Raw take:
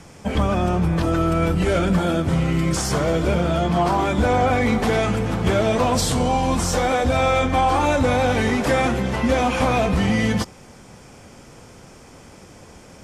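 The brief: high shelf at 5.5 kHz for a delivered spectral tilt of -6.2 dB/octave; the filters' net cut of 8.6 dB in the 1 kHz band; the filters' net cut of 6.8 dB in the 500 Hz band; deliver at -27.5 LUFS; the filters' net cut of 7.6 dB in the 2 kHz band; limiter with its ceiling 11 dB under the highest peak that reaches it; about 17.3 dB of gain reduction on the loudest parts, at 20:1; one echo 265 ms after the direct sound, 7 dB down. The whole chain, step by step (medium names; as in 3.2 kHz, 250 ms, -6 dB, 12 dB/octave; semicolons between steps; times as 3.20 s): peaking EQ 500 Hz -5.5 dB; peaking EQ 1 kHz -8.5 dB; peaking EQ 2 kHz -5.5 dB; treble shelf 5.5 kHz -9 dB; compression 20:1, threshold -34 dBFS; peak limiter -36 dBFS; delay 265 ms -7 dB; trim +16.5 dB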